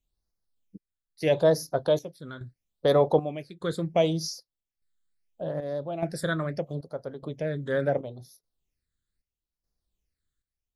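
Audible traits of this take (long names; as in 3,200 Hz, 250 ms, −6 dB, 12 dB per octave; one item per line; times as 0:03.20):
phaser sweep stages 8, 0.75 Hz, lowest notch 750–2,800 Hz
chopped level 0.83 Hz, depth 65%, duty 65%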